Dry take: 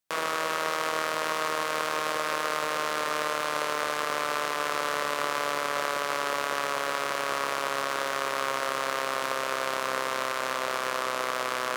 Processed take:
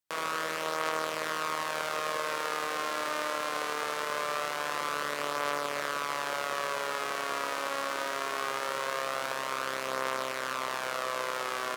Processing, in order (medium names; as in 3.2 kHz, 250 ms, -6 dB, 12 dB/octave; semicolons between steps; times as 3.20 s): delay 76 ms -6.5 dB; trim -4.5 dB